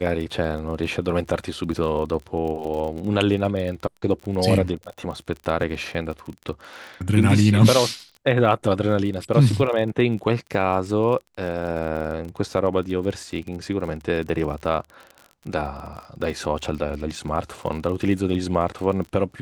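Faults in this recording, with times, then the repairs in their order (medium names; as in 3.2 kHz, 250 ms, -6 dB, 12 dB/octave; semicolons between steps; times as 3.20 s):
crackle 33 per s -31 dBFS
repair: de-click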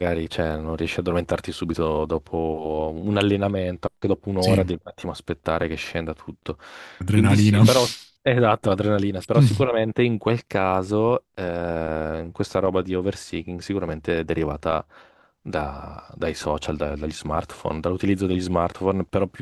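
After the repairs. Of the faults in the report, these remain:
nothing left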